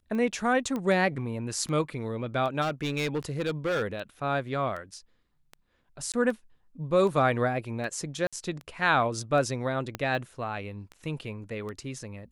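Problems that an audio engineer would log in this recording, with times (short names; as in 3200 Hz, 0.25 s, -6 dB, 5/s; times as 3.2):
tick 78 rpm -26 dBFS
0.76 pop -20 dBFS
2.61–3.83 clipped -24.5 dBFS
6.12–6.14 gap 17 ms
8.27–8.33 gap 56 ms
9.95 pop -17 dBFS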